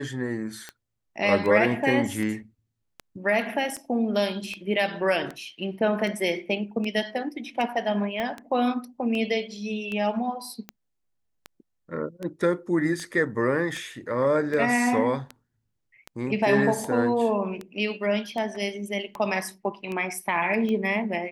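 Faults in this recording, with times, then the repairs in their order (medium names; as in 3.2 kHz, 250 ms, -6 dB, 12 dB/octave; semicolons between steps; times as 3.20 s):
tick 78 rpm -20 dBFS
8.20 s: pop -17 dBFS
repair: de-click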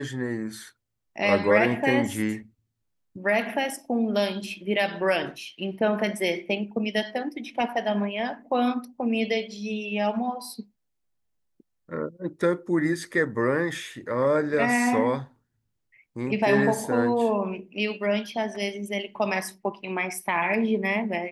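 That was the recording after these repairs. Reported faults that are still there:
8.20 s: pop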